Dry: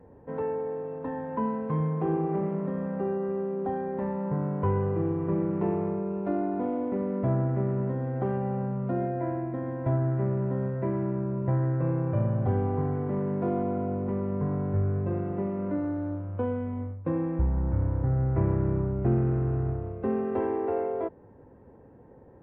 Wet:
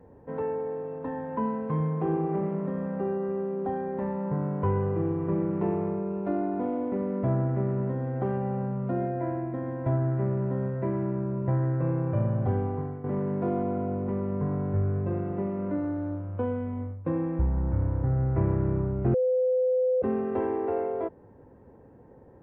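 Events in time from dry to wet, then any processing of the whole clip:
0:12.33–0:13.04: fade out equal-power, to −11.5 dB
0:19.14–0:20.02: beep over 509 Hz −21 dBFS

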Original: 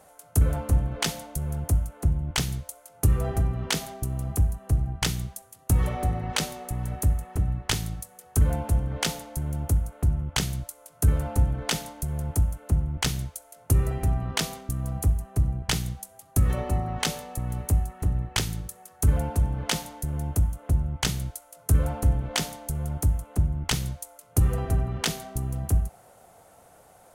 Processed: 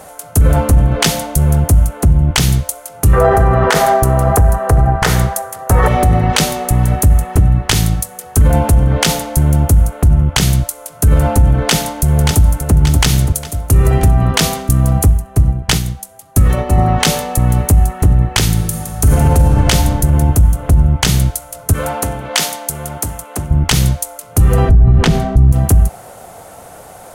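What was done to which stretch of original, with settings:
0:03.13–0:05.88: flat-topped bell 900 Hz +12.5 dB 2.5 octaves
0:11.58–0:12.74: delay throw 580 ms, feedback 45%, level −10 dB
0:15.11–0:16.78: expander for the loud parts, over −33 dBFS
0:18.52–0:19.65: thrown reverb, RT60 2.9 s, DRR 2 dB
0:21.73–0:23.51: high-pass filter 760 Hz 6 dB per octave
0:24.69–0:25.52: RIAA equalisation playback
whole clip: boost into a limiter +19.5 dB; level −1 dB

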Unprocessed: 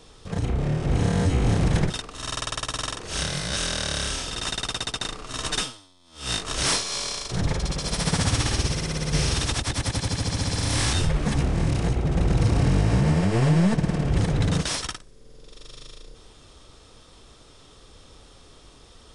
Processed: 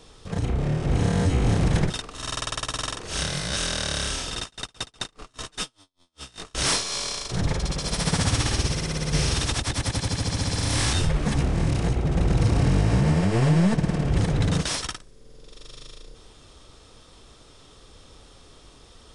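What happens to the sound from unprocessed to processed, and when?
0:04.42–0:06.55: tremolo with a sine in dB 5 Hz, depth 33 dB

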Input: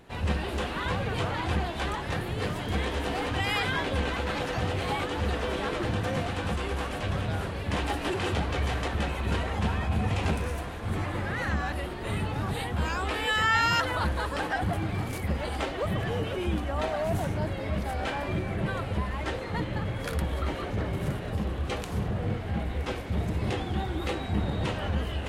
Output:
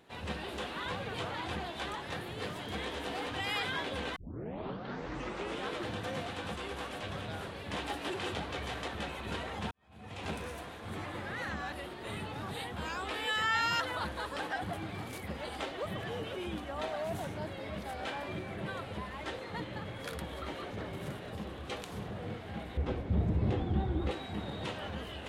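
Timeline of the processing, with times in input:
0:04.16: tape start 1.56 s
0:09.71–0:10.33: fade in quadratic
0:22.77–0:24.11: spectral tilt −4 dB per octave
whole clip: high-pass filter 200 Hz 6 dB per octave; parametric band 3,600 Hz +4 dB 0.43 octaves; level −6.5 dB

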